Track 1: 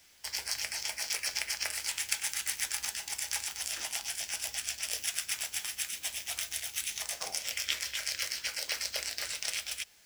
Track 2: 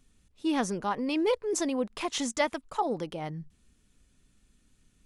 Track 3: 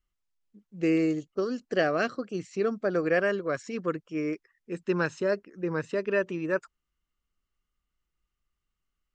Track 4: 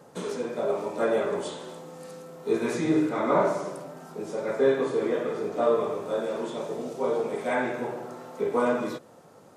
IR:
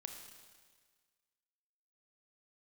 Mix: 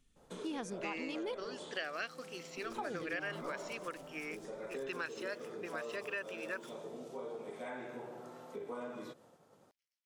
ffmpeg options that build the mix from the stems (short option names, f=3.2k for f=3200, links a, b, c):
-filter_complex "[0:a]acompressor=threshold=-40dB:ratio=3,adelay=1600,volume=-19dB[a];[1:a]volume=-8dB,asplit=3[b][c][d];[b]atrim=end=1.46,asetpts=PTS-STARTPTS,afade=t=out:st=1.456:d=0.004:c=hsin[e];[c]atrim=start=1.46:end=2.57,asetpts=PTS-STARTPTS,volume=0[f];[d]atrim=start=2.57,asetpts=PTS-STARTPTS,afade=t=in:d=0.004:c=hsin[g];[e][f][g]concat=n=3:v=0:a=1[h];[2:a]bandpass=f=3k:t=q:w=0.81:csg=0,volume=0.5dB,asplit=2[i][j];[3:a]agate=range=-33dB:threshold=-48dB:ratio=3:detection=peak,acompressor=threshold=-37dB:ratio=2,adelay=150,volume=-9dB[k];[j]apad=whole_len=514179[l];[a][l]sidechaingate=range=-33dB:threshold=-54dB:ratio=16:detection=peak[m];[m][h][i][k]amix=inputs=4:normalize=0,equalizer=f=3.3k:t=o:w=0.48:g=3,acompressor=threshold=-38dB:ratio=3"